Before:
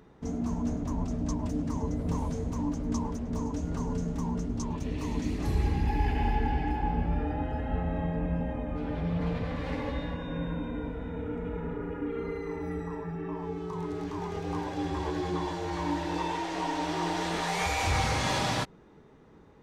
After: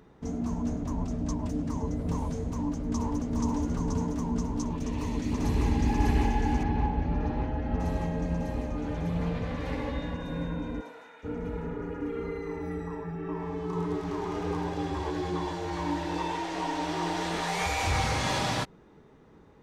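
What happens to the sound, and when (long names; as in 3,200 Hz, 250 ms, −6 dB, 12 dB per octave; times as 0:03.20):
0:02.49–0:03.27: delay throw 480 ms, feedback 80%, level −1.5 dB
0:04.71–0:05.66: delay throw 600 ms, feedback 75%, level −0.5 dB
0:06.63–0:07.80: high-frequency loss of the air 240 metres
0:10.80–0:11.23: high-pass filter 480 Hz → 1,400 Hz
0:13.18–0:14.40: thrown reverb, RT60 2.9 s, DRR −0.5 dB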